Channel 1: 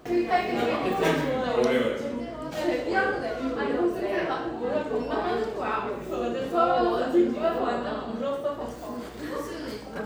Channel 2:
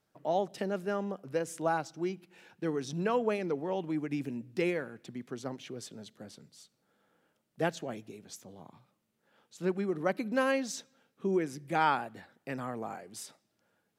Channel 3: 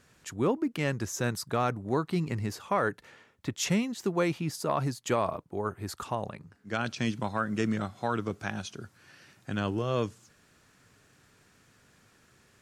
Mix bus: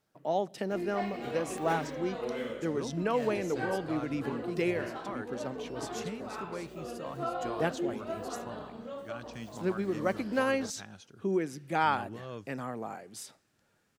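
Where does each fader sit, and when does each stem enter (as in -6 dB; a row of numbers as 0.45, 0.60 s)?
-12.5, 0.0, -13.5 dB; 0.65, 0.00, 2.35 s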